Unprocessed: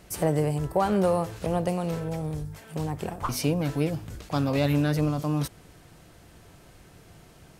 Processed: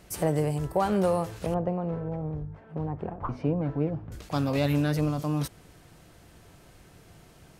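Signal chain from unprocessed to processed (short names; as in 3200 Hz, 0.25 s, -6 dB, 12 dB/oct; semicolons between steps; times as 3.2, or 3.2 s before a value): 1.54–4.12 LPF 1200 Hz 12 dB/oct; gain -1.5 dB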